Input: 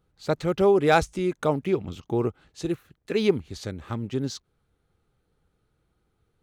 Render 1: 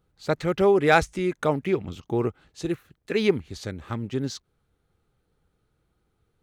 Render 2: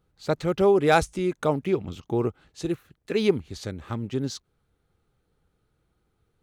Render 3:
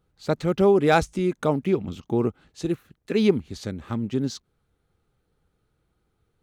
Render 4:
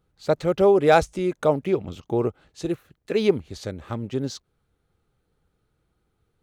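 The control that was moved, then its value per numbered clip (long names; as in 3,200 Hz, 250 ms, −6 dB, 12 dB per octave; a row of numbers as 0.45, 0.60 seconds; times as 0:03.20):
dynamic equaliser, frequency: 1,900, 9,900, 220, 580 Hertz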